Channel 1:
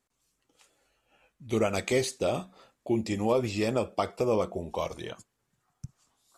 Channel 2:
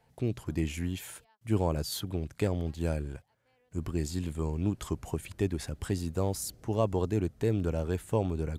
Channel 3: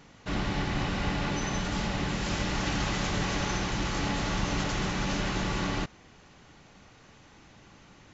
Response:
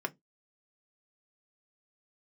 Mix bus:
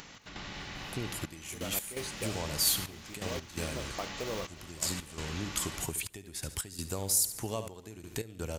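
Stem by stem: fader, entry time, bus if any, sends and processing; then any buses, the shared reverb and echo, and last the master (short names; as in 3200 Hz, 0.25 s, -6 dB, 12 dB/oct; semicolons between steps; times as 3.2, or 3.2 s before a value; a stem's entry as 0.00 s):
-8.5 dB, 0.00 s, bus A, no send, no echo send, tilt shelf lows +4 dB; companded quantiser 6-bit
+2.5 dB, 0.75 s, bus A, no send, echo send -17.5 dB, high shelf 5100 Hz +10 dB
-11.0 dB, 0.00 s, no bus, no send, echo send -10.5 dB, dry
bus A: 0.0 dB, compressor, threshold -28 dBFS, peak gain reduction 9.5 dB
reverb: off
echo: feedback echo 72 ms, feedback 49%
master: step gate "x.xxxxx.." 84 bpm -12 dB; upward compressor, threshold -36 dBFS; tilt shelf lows -5.5 dB, about 1300 Hz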